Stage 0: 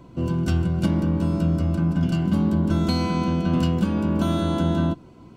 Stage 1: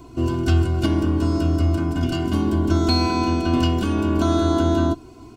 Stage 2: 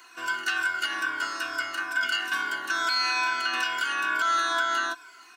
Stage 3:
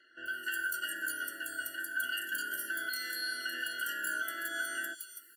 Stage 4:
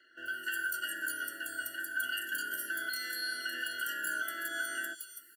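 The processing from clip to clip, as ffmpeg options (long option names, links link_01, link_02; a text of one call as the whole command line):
ffmpeg -i in.wav -filter_complex "[0:a]acrossover=split=4900[link_01][link_02];[link_02]acompressor=threshold=-54dB:ratio=4:attack=1:release=60[link_03];[link_01][link_03]amix=inputs=2:normalize=0,bass=frequency=250:gain=1,treble=frequency=4000:gain=8,aecho=1:1:2.8:0.93,volume=1.5dB" out.wav
ffmpeg -i in.wav -af "afftfilt=real='re*pow(10,9/40*sin(2*PI*(1.7*log(max(b,1)*sr/1024/100)/log(2)-(-2.3)*(pts-256)/sr)))':imag='im*pow(10,9/40*sin(2*PI*(1.7*log(max(b,1)*sr/1024/100)/log(2)-(-2.3)*(pts-256)/sr)))':win_size=1024:overlap=0.75,highpass=frequency=1600:width_type=q:width=5.8,alimiter=limit=-18dB:level=0:latency=1:release=78,volume=1.5dB" out.wav
ffmpeg -i in.wav -filter_complex "[0:a]acrossover=split=4100[link_01][link_02];[link_02]adelay=260[link_03];[link_01][link_03]amix=inputs=2:normalize=0,aexciter=amount=6.5:drive=9.4:freq=8600,afftfilt=real='re*eq(mod(floor(b*sr/1024/680),2),0)':imag='im*eq(mod(floor(b*sr/1024/680),2),0)':win_size=1024:overlap=0.75,volume=-7.5dB" out.wav
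ffmpeg -i in.wav -filter_complex "[0:a]acrossover=split=150|1000|7400[link_01][link_02][link_03][link_04];[link_01]aecho=1:1:407:0.282[link_05];[link_02]acrusher=bits=4:mode=log:mix=0:aa=0.000001[link_06];[link_05][link_06][link_03][link_04]amix=inputs=4:normalize=0" out.wav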